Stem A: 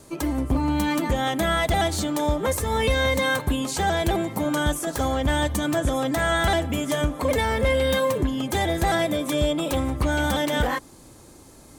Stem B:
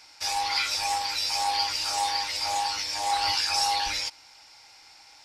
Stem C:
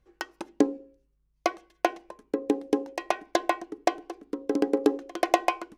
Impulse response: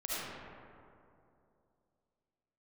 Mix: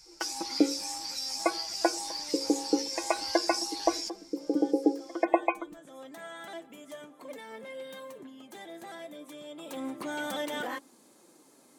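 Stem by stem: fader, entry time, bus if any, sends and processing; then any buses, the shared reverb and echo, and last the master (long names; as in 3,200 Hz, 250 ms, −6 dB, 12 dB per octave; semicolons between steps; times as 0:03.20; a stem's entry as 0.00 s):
0:05.67 −24 dB → 0:06.06 −16.5 dB → 0:09.44 −16.5 dB → 0:09.91 −5.5 dB, 0.00 s, no send, high-pass filter 210 Hz 24 dB per octave; flanger 0.29 Hz, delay 1.4 ms, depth 8.2 ms, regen +64%
−12.0 dB, 0.00 s, no send, high shelf with overshoot 4,300 Hz +10 dB, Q 1.5; downward compressor 2 to 1, threshold −23 dBFS, peak gain reduction 6.5 dB
−3.5 dB, 0.00 s, no send, gate on every frequency bin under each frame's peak −20 dB strong; comb filter 6.1 ms, depth 86%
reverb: not used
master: no processing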